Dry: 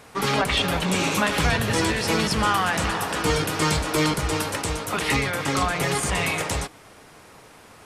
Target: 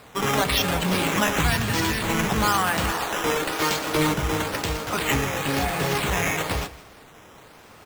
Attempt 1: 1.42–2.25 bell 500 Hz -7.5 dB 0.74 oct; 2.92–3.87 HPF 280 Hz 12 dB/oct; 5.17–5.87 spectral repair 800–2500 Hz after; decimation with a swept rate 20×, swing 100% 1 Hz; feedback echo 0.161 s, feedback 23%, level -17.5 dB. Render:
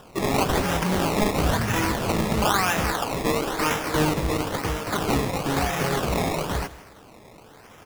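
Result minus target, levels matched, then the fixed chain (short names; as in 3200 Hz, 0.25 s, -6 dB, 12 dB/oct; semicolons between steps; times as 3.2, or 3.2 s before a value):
decimation with a swept rate: distortion +7 dB
1.42–2.25 bell 500 Hz -7.5 dB 0.74 oct; 2.92–3.87 HPF 280 Hz 12 dB/oct; 5.17–5.87 spectral repair 800–2500 Hz after; decimation with a swept rate 7×, swing 100% 1 Hz; feedback echo 0.161 s, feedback 23%, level -17.5 dB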